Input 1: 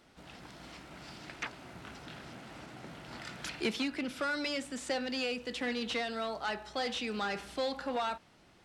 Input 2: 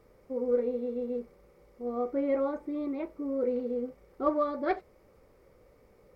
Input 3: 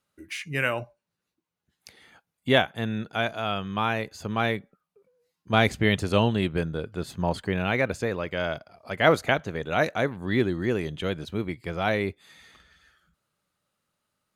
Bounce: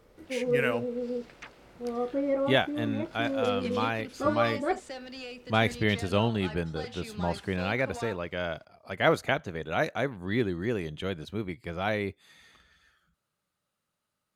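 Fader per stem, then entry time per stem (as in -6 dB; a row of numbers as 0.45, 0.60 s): -7.0, +0.5, -4.0 dB; 0.00, 0.00, 0.00 s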